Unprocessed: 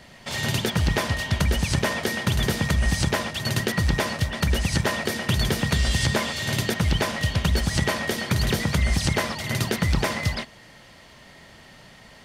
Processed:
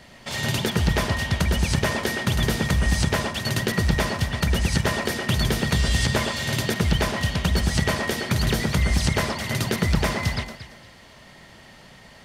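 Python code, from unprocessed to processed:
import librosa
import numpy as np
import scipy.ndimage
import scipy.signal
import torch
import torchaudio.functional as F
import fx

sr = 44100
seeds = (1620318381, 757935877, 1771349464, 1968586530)

y = fx.echo_alternate(x, sr, ms=115, hz=1500.0, feedback_pct=50, wet_db=-6.0)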